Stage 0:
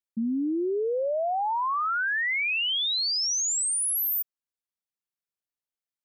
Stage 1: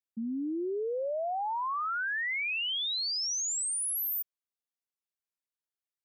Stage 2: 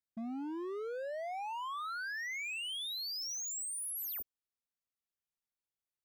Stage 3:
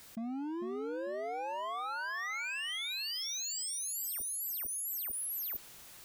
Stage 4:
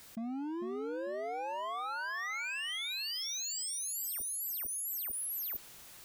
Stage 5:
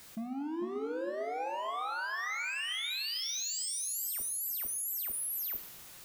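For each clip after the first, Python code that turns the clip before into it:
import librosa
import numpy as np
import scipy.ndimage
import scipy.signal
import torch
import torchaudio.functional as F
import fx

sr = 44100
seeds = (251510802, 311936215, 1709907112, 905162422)

y1 = scipy.signal.sosfilt(scipy.signal.butter(2, 190.0, 'highpass', fs=sr, output='sos'), x)
y1 = y1 * librosa.db_to_amplitude(-5.5)
y2 = fx.low_shelf(y1, sr, hz=190.0, db=9.5)
y2 = np.clip(y2, -10.0 ** (-33.5 / 20.0), 10.0 ** (-33.5 / 20.0))
y2 = y2 * librosa.db_to_amplitude(-5.0)
y3 = fx.echo_feedback(y2, sr, ms=448, feedback_pct=21, wet_db=-4.5)
y3 = fx.env_flatten(y3, sr, amount_pct=100)
y4 = y3
y5 = fx.rev_double_slope(y4, sr, seeds[0], early_s=0.78, late_s=2.6, knee_db=-20, drr_db=7.5)
y5 = y5 * librosa.db_to_amplitude(1.0)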